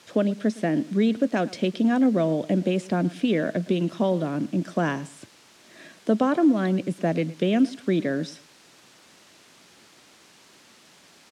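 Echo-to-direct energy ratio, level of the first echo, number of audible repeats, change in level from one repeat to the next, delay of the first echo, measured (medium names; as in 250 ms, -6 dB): -20.0 dB, -20.0 dB, 2, -12.5 dB, 112 ms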